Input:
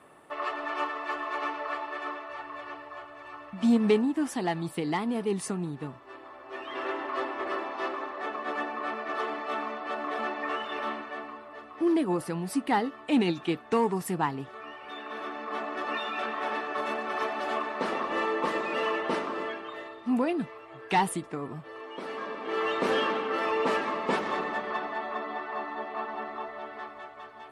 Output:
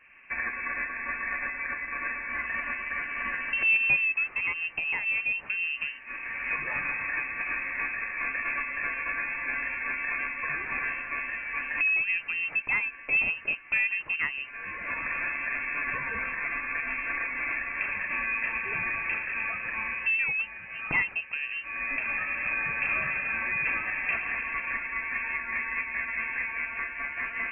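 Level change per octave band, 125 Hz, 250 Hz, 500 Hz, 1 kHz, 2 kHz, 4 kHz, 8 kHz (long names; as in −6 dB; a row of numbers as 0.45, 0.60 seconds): −10.0 dB, −18.5 dB, −17.0 dB, −7.5 dB, +10.0 dB, −7.5 dB, below −35 dB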